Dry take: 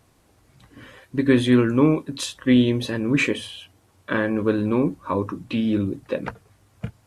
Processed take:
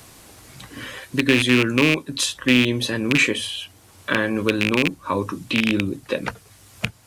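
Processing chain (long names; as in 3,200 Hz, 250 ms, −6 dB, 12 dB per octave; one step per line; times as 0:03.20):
loose part that buzzes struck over −22 dBFS, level −11 dBFS
high-shelf EQ 2,000 Hz +10 dB
multiband upward and downward compressor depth 40%
level −1 dB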